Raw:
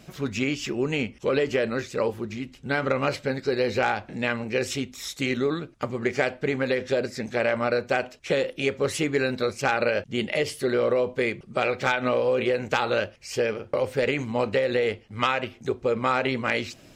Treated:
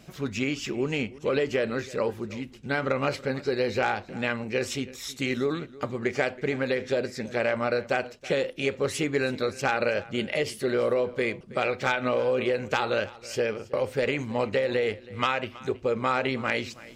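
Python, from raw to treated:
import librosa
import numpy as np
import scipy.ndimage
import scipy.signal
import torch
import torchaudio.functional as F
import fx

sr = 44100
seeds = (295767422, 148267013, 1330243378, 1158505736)

y = x + 10.0 ** (-19.5 / 20.0) * np.pad(x, (int(324 * sr / 1000.0), 0))[:len(x)]
y = y * librosa.db_to_amplitude(-2.0)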